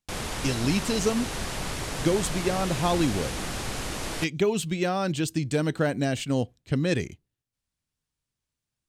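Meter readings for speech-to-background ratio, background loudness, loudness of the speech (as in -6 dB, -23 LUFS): 5.0 dB, -32.5 LUFS, -27.5 LUFS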